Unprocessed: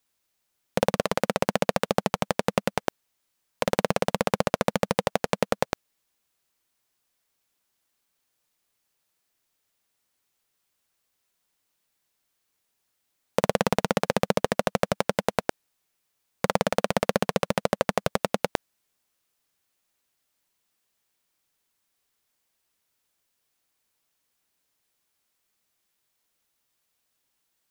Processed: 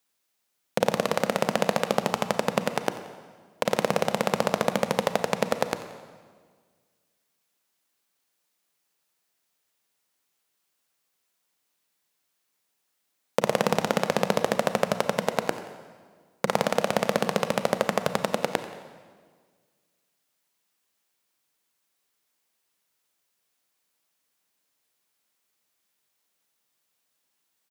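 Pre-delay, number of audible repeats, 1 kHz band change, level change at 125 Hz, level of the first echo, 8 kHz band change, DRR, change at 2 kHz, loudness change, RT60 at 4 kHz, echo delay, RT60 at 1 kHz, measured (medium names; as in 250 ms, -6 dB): 30 ms, 2, +0.5 dB, -2.0 dB, -17.5 dB, +0.5 dB, 9.0 dB, +0.5 dB, 0.0 dB, 1.4 s, 89 ms, 1.6 s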